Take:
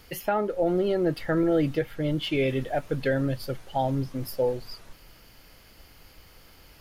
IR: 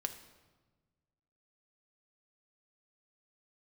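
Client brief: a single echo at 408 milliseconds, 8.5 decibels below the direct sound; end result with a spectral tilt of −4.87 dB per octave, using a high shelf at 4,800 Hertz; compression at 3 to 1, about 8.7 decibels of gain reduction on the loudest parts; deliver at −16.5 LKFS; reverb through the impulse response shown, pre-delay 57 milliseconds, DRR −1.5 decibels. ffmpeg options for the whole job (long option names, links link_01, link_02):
-filter_complex "[0:a]highshelf=frequency=4800:gain=8,acompressor=threshold=-32dB:ratio=3,aecho=1:1:408:0.376,asplit=2[link_01][link_02];[1:a]atrim=start_sample=2205,adelay=57[link_03];[link_02][link_03]afir=irnorm=-1:irlink=0,volume=1.5dB[link_04];[link_01][link_04]amix=inputs=2:normalize=0,volume=13.5dB"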